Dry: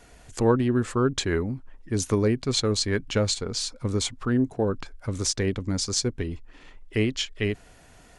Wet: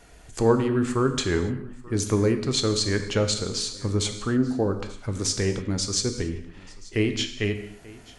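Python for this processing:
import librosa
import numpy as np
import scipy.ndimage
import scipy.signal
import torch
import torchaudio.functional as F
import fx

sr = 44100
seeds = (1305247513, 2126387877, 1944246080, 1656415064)

y = x + 10.0 ** (-22.0 / 20.0) * np.pad(x, (int(886 * sr / 1000.0), 0))[:len(x)]
y = fx.rev_gated(y, sr, seeds[0], gate_ms=310, shape='falling', drr_db=6.5)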